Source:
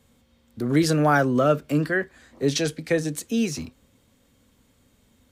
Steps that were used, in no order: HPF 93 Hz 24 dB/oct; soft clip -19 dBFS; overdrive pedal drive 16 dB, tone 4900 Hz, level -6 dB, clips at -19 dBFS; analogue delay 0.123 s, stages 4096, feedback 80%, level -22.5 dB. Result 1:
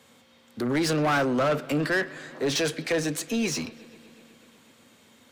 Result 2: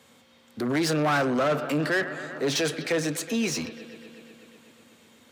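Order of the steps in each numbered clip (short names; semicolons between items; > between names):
HPF > soft clip > overdrive pedal > analogue delay; analogue delay > soft clip > overdrive pedal > HPF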